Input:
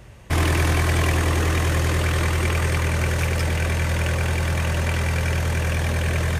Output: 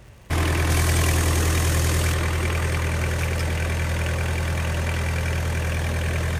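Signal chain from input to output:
0:00.70–0:02.14: bass and treble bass +2 dB, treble +8 dB
surface crackle 140 per second −40 dBFS
level −2 dB

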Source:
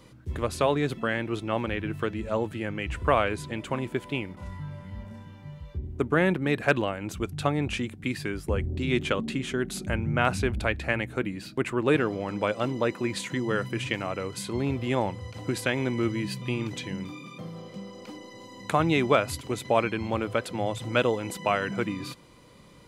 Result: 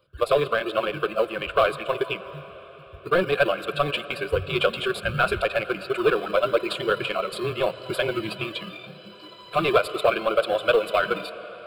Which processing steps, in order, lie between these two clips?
noise reduction from a noise print of the clip's start 18 dB
in parallel at −7.5 dB: sample-and-hold swept by an LFO 24×, swing 60% 0.43 Hz
on the sum: time stretch by overlap-add 0.51×, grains 56 ms
on a send at −17 dB: convolution reverb RT60 5.2 s, pre-delay 84 ms
on the sum: mid-hump overdrive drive 20 dB, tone 2,500 Hz, clips at −5 dBFS
phaser with its sweep stopped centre 1,300 Hz, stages 8

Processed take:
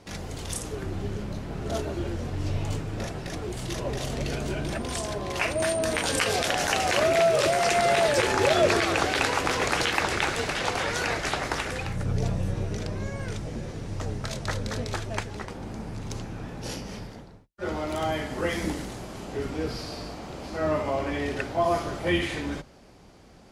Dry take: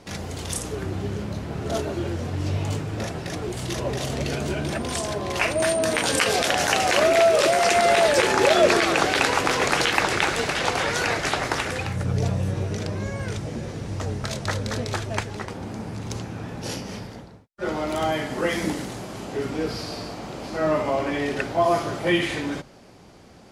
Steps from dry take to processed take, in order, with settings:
sub-octave generator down 2 octaves, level −4 dB
in parallel at −6 dB: asymmetric clip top −11.5 dBFS
on the sum: level −7.5 dB

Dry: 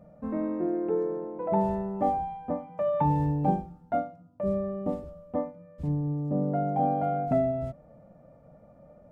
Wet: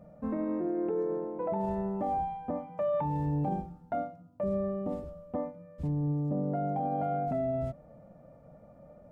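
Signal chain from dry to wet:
brickwall limiter −24 dBFS, peak gain reduction 10.5 dB

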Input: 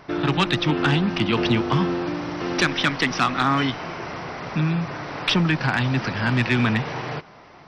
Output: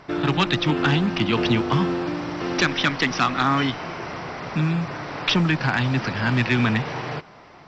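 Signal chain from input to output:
mu-law 128 kbit/s 16,000 Hz

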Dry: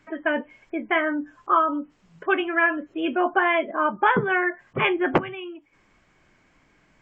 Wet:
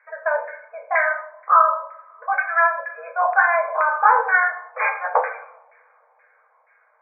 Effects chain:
coupled-rooms reverb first 0.66 s, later 3.2 s, from −28 dB, DRR 0.5 dB
auto-filter low-pass saw down 2.1 Hz 880–1,900 Hz
brick-wall band-pass 450–2,500 Hz
level −2 dB

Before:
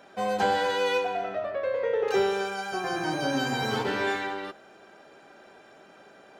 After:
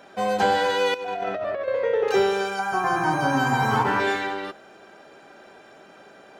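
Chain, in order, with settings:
0:00.94–0:01.68: compressor whose output falls as the input rises −33 dBFS, ratio −1
0:02.59–0:04.00: octave-band graphic EQ 125/500/1,000/4,000 Hz +5/−6/+11/−9 dB
level +4 dB

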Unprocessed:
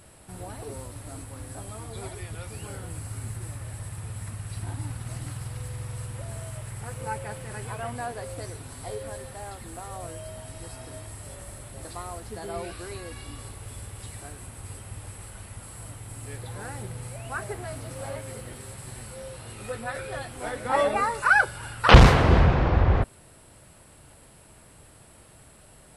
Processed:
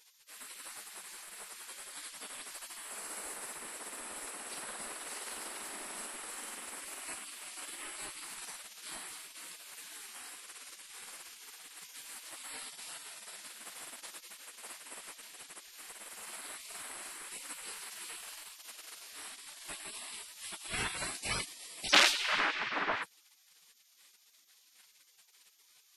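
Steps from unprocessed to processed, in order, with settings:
gate on every frequency bin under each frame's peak −25 dB weak
level +3.5 dB

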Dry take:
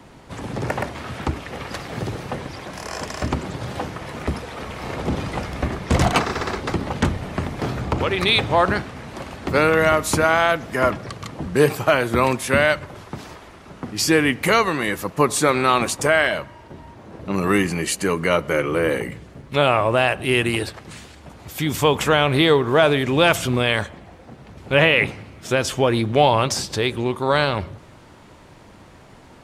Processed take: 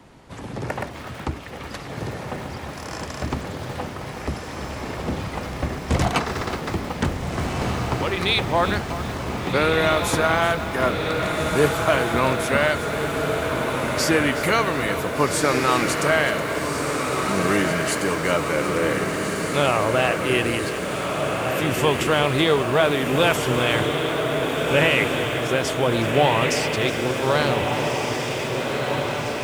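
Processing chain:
feedback delay with all-pass diffusion 1,579 ms, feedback 69%, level −4 dB
feedback echo at a low word length 370 ms, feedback 35%, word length 5 bits, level −12.5 dB
level −3.5 dB

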